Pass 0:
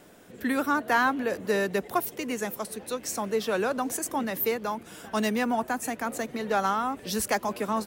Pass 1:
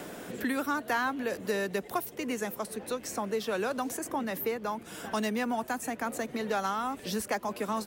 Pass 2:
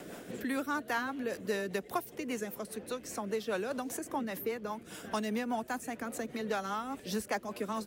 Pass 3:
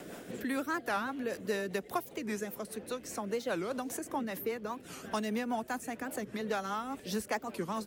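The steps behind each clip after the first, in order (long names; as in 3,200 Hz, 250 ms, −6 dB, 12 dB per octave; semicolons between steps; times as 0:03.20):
multiband upward and downward compressor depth 70%; level −4.5 dB
rotating-speaker cabinet horn 5 Hz; level −1.5 dB
wow of a warped record 45 rpm, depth 250 cents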